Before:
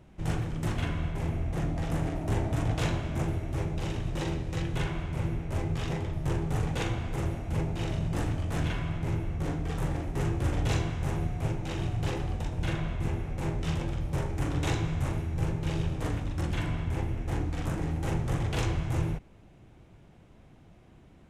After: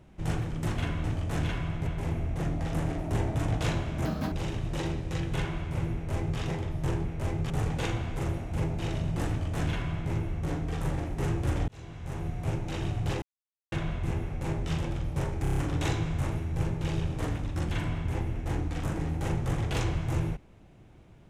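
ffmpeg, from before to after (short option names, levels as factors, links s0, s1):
-filter_complex "[0:a]asplit=15[s0][s1][s2][s3][s4][s5][s6][s7][s8][s9][s10][s11][s12][s13][s14];[s0]atrim=end=1.042[s15];[s1]atrim=start=8.248:end=9.082[s16];[s2]atrim=start=1.038:end=3.224[s17];[s3]atrim=start=3.22:end=3.74,asetpts=PTS-STARTPTS,asetrate=84672,aresample=44100[s18];[s4]atrim=start=3.736:end=6.472[s19];[s5]atrim=start=5.358:end=5.812[s20];[s6]atrim=start=6.468:end=10.65,asetpts=PTS-STARTPTS,afade=t=out:st=4.178:d=0.004:c=hsin[s21];[s7]atrim=start=10.65:end=12.19,asetpts=PTS-STARTPTS,afade=t=in:d=0.84,afade=t=out:st=1.536:d=0.004:c=hsin[s22];[s8]atrim=start=12.19:end=12.69,asetpts=PTS-STARTPTS,volume=0[s23];[s9]atrim=start=12.69:end=14.422,asetpts=PTS-STARTPTS,afade=t=in:d=0.004:c=hsin[s24];[s10]atrim=start=14.388:end=14.422[s25];[s11]atrim=start=14.388:end=14.422[s26];[s12]atrim=start=14.388:end=14.422[s27];[s13]atrim=start=14.388:end=14.422[s28];[s14]atrim=start=14.388[s29];[s15][s16]acrossfade=d=0.004:c1=hsin:c2=hsin[s30];[s30][s17]acrossfade=d=0.004:c1=hsin:c2=hsin[s31];[s31][s18]acrossfade=d=0.004:c1=hsin:c2=hsin[s32];[s32][s19]acrossfade=d=0.004:c1=hsin:c2=hsin[s33];[s33][s20]acrossfade=d=0.004:c1=hsin:c2=hsin[s34];[s21][s22][s23][s24]concat=n=4:v=0:a=1[s35];[s34][s35]acrossfade=d=0.004:c1=hsin:c2=hsin[s36];[s36][s25]acrossfade=d=0.004:c1=hsin:c2=hsin[s37];[s37][s26]acrossfade=d=0.004:c1=hsin:c2=hsin[s38];[s38][s27]acrossfade=d=0.004:c1=hsin:c2=hsin[s39];[s39][s28]acrossfade=d=0.004:c1=hsin:c2=hsin[s40];[s40][s29]acrossfade=d=0.004:c1=hsin:c2=hsin"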